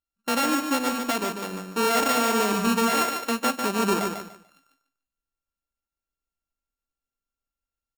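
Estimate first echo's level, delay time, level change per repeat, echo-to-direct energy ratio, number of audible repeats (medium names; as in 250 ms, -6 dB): -6.0 dB, 146 ms, -12.5 dB, -5.5 dB, 3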